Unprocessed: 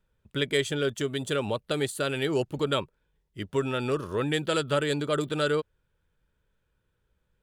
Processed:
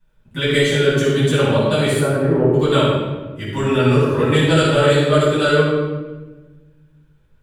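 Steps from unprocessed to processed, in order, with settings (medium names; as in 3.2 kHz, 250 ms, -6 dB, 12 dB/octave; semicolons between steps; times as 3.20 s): 1.99–2.53 s: low-pass 1.3 kHz 24 dB/octave; 3.90–4.40 s: crackle 360 per s -51 dBFS; simulated room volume 880 m³, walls mixed, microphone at 9.2 m; trim -3.5 dB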